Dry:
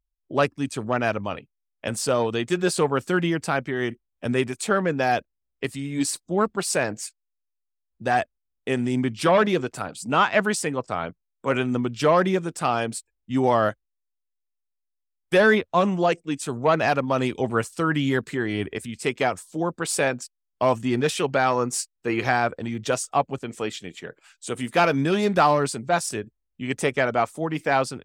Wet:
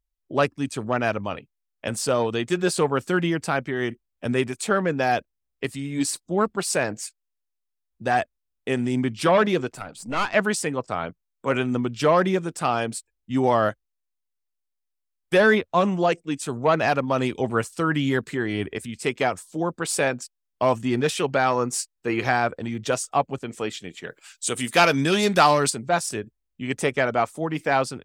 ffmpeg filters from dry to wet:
ffmpeg -i in.wav -filter_complex "[0:a]asettb=1/sr,asplit=3[link_01][link_02][link_03];[link_01]atrim=end=9.744[link_04];[link_02]atrim=start=9.74:end=10.34,asetpts=PTS-STARTPTS,afade=type=in:duration=0.004:curve=qsin,afade=type=out:start_time=0.596:duration=0.004:curve=qsin,aeval=exprs='(tanh(7.94*val(0)+0.7)-tanh(0.7))/7.94':channel_layout=same[link_05];[link_03]atrim=start=10.336[link_06];[link_04][link_05]acrossfade=duration=0.004:curve1=hsin:curve2=qsin[link_07];[link_07][link_06]acrossfade=duration=0.004:curve1=qsin:curve2=hsin,asplit=3[link_08][link_09][link_10];[link_08]afade=type=out:start_time=24.03:duration=0.02[link_11];[link_09]highshelf=frequency=2500:gain=11.5,afade=type=in:start_time=24.03:duration=0.02,afade=type=out:start_time=25.69:duration=0.02[link_12];[link_10]afade=type=in:start_time=25.69:duration=0.02[link_13];[link_11][link_12][link_13]amix=inputs=3:normalize=0" out.wav

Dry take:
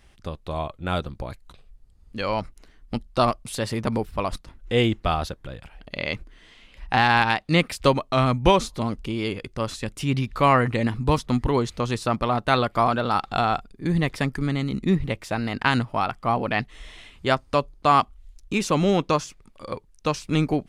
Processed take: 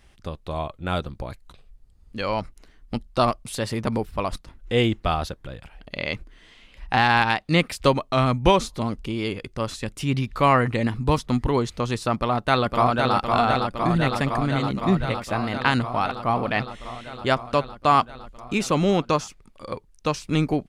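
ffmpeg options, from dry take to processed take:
ffmpeg -i in.wav -filter_complex "[0:a]asplit=2[link_01][link_02];[link_02]afade=type=in:start_time=12.14:duration=0.01,afade=type=out:start_time=13.15:duration=0.01,aecho=0:1:510|1020|1530|2040|2550|3060|3570|4080|4590|5100|5610|6120:0.630957|0.504766|0.403813|0.32305|0.25844|0.206752|0.165402|0.132321|0.105857|0.0846857|0.0677485|0.0541988[link_03];[link_01][link_03]amix=inputs=2:normalize=0" out.wav

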